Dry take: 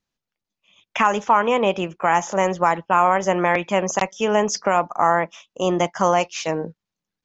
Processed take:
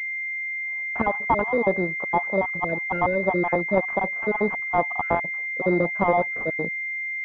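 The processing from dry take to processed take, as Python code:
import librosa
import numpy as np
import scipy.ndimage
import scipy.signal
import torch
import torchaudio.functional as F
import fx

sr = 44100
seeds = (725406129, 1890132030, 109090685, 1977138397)

y = fx.spec_dropout(x, sr, seeds[0], share_pct=46)
y = fx.pwm(y, sr, carrier_hz=2100.0)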